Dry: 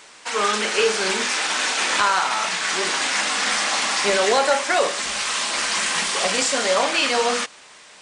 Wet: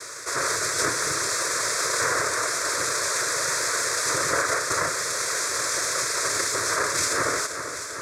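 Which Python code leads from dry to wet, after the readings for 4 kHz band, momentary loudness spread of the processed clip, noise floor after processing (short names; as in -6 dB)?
-6.5 dB, 2 LU, -34 dBFS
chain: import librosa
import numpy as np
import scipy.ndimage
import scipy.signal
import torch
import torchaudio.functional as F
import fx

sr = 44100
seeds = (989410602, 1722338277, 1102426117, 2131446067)

y = fx.lower_of_two(x, sr, delay_ms=6.1)
y = scipy.signal.sosfilt(scipy.signal.butter(2, 4600.0, 'lowpass', fs=sr, output='sos'), y)
y = fx.high_shelf(y, sr, hz=3200.0, db=8.5)
y = fx.noise_vocoder(y, sr, seeds[0], bands=3)
y = fx.fixed_phaser(y, sr, hz=800.0, stages=6)
y = fx.echo_feedback(y, sr, ms=392, feedback_pct=58, wet_db=-17.5)
y = fx.env_flatten(y, sr, amount_pct=50)
y = F.gain(torch.from_numpy(y), -3.5).numpy()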